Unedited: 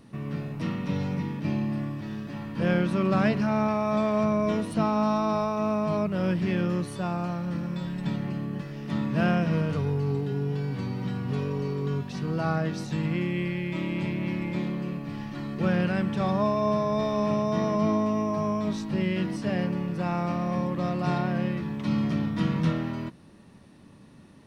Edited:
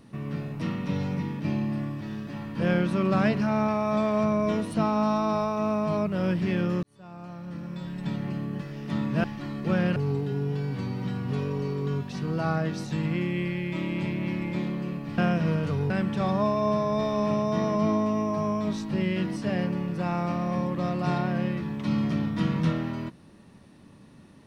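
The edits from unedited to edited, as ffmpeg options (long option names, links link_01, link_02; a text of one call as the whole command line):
ffmpeg -i in.wav -filter_complex "[0:a]asplit=6[link_01][link_02][link_03][link_04][link_05][link_06];[link_01]atrim=end=6.83,asetpts=PTS-STARTPTS,afade=type=out:start_time=6.826:duration=0.004:curve=hsin[link_07];[link_02]atrim=start=6.83:end=9.242,asetpts=PTS-STARTPTS,afade=type=in:duration=1.5[link_08];[link_03]atrim=start=15.178:end=15.902[link_09];[link_04]atrim=start=9.958:end=15.182[link_10];[link_05]atrim=start=9.238:end=9.962[link_11];[link_06]atrim=start=15.898[link_12];[link_07][link_08]concat=n=2:v=0:a=1[link_13];[link_13][link_09]acrossfade=duration=0.004:curve1=hsin:curve2=hsin[link_14];[link_14][link_10]acrossfade=duration=0.004:curve1=hsin:curve2=hsin[link_15];[link_15][link_11]acrossfade=duration=0.004:curve1=hsin:curve2=hsin[link_16];[link_16][link_12]acrossfade=duration=0.004:curve1=hsin:curve2=hsin" out.wav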